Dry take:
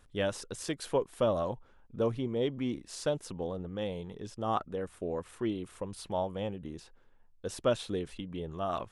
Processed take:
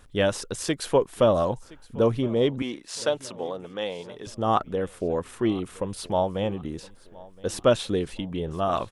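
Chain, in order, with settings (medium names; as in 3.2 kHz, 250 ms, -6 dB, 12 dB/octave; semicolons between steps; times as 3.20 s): 2.62–4.27 s: frequency weighting A; on a send: feedback delay 1018 ms, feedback 45%, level -22 dB; on the sum: trim +8.5 dB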